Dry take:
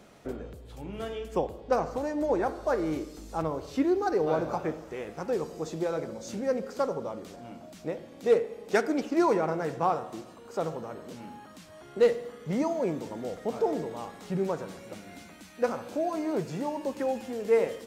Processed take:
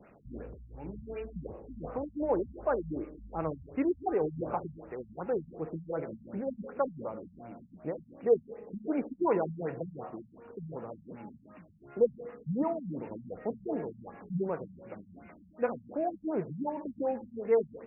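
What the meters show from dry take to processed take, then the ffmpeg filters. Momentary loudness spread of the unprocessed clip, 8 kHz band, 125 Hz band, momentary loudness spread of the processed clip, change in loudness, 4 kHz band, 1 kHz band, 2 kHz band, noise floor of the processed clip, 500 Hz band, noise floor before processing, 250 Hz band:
18 LU, under -30 dB, -2.5 dB, 17 LU, -4.5 dB, under -25 dB, -6.0 dB, -10.0 dB, -58 dBFS, -4.5 dB, -50 dBFS, -4.0 dB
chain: -filter_complex "[0:a]acrossover=split=420[a][b];[a]aeval=exprs='val(0)*(1-0.5/2+0.5/2*cos(2*PI*8*n/s))':c=same[c];[b]aeval=exprs='val(0)*(1-0.5/2-0.5/2*cos(2*PI*8*n/s))':c=same[d];[c][d]amix=inputs=2:normalize=0,afftfilt=real='re*lt(b*sr/1024,210*pow(2900/210,0.5+0.5*sin(2*PI*2.7*pts/sr)))':imag='im*lt(b*sr/1024,210*pow(2900/210,0.5+0.5*sin(2*PI*2.7*pts/sr)))':win_size=1024:overlap=0.75"

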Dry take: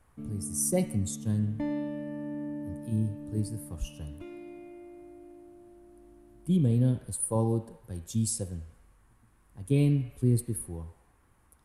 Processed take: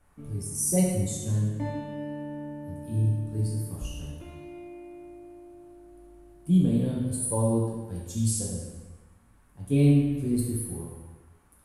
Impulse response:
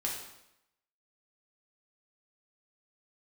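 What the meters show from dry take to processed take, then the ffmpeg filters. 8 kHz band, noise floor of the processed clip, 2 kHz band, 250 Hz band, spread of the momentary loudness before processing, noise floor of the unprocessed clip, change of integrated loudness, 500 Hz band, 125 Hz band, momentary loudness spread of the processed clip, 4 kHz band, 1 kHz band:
+3.0 dB, -59 dBFS, n/a, +3.5 dB, 19 LU, -64 dBFS, +2.5 dB, +2.5 dB, +2.5 dB, 21 LU, +3.0 dB, +3.0 dB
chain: -filter_complex "[1:a]atrim=start_sample=2205,asetrate=31752,aresample=44100[a];[0:a][a]afir=irnorm=-1:irlink=0,volume=-3dB"

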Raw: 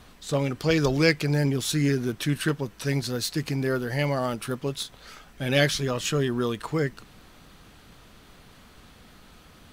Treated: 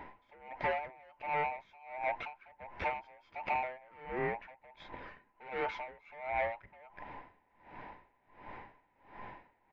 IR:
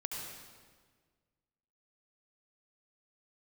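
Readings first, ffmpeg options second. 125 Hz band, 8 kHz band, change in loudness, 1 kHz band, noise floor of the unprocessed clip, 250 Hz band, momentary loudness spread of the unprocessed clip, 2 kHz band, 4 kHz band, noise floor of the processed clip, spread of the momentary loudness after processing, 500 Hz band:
-28.0 dB, under -40 dB, -12.5 dB, 0.0 dB, -52 dBFS, -25.5 dB, 8 LU, -10.0 dB, -24.5 dB, -73 dBFS, 20 LU, -13.5 dB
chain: -af "afftfilt=real='real(if(between(b,1,1008),(2*floor((b-1)/48)+1)*48-b,b),0)':imag='imag(if(between(b,1,1008),(2*floor((b-1)/48)+1)*48-b,b),0)*if(between(b,1,1008),-1,1)':win_size=2048:overlap=0.75,tiltshelf=f=1.1k:g=9.5,acompressor=threshold=-25dB:ratio=16,aresample=16000,asoftclip=type=tanh:threshold=-29.5dB,aresample=44100,lowpass=f=2.2k:t=q:w=4.1,aeval=exprs='val(0)*pow(10,-27*(0.5-0.5*cos(2*PI*1.4*n/s))/20)':c=same"

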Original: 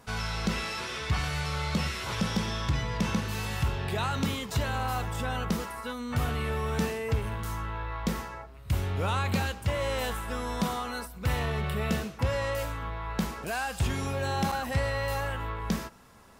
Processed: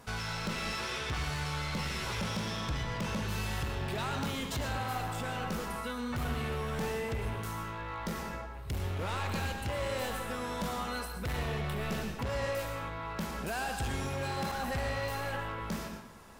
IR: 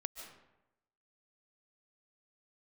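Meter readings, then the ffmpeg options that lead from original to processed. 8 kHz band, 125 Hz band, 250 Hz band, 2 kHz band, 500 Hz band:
-3.0 dB, -6.0 dB, -5.0 dB, -3.0 dB, -3.5 dB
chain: -filter_complex "[0:a]asplit=2[a][b];[b]acompressor=threshold=-38dB:ratio=6,volume=0dB[c];[a][c]amix=inputs=2:normalize=0,asoftclip=type=hard:threshold=-26dB[d];[1:a]atrim=start_sample=2205,asetrate=57330,aresample=44100[e];[d][e]afir=irnorm=-1:irlink=0"

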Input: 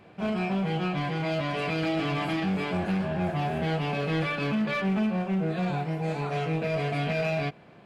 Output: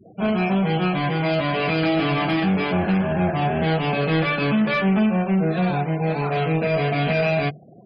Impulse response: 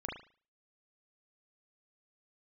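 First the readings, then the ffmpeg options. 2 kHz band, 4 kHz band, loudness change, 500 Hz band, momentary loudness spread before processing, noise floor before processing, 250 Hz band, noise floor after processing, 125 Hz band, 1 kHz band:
+7.5 dB, +7.0 dB, +7.0 dB, +7.5 dB, 3 LU, -52 dBFS, +7.5 dB, -46 dBFS, +6.5 dB, +7.5 dB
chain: -af "acontrast=38,afftfilt=real='re*gte(hypot(re,im),0.0141)':imag='im*gte(hypot(re,im),0.0141)':win_size=1024:overlap=0.75,bandreject=f=50:t=h:w=6,bandreject=f=100:t=h:w=6,bandreject=f=150:t=h:w=6,volume=2dB"

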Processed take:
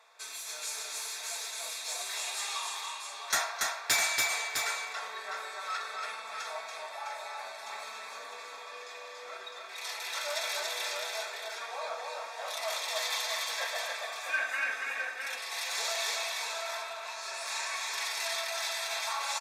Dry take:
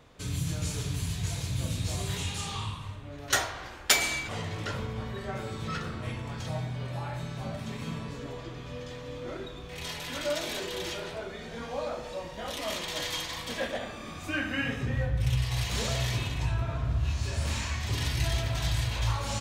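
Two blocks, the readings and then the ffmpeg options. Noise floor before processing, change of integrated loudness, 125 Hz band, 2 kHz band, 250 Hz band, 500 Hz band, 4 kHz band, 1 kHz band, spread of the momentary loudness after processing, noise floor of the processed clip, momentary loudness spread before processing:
-42 dBFS, -1.5 dB, under -35 dB, +2.0 dB, under -25 dB, -4.5 dB, +0.5 dB, +2.0 dB, 10 LU, -45 dBFS, 11 LU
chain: -filter_complex "[0:a]highpass=f=700:w=0.5412,highpass=f=700:w=1.3066,aecho=1:1:4.5:0.45,asoftclip=type=hard:threshold=-22dB,asuperstop=centerf=3000:order=4:qfactor=6.3,asplit=2[a][b];[b]aecho=0:1:283|656:0.708|0.501[c];[a][c]amix=inputs=2:normalize=0,aresample=32000,aresample=44100"

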